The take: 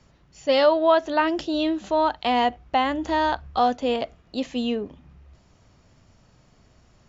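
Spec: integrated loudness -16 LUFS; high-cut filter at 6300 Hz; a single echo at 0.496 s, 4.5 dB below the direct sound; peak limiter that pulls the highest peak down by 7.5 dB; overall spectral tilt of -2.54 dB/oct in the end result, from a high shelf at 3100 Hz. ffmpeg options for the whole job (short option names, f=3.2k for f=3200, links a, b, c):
-af "lowpass=6.3k,highshelf=f=3.1k:g=-5.5,alimiter=limit=-15dB:level=0:latency=1,aecho=1:1:496:0.596,volume=8.5dB"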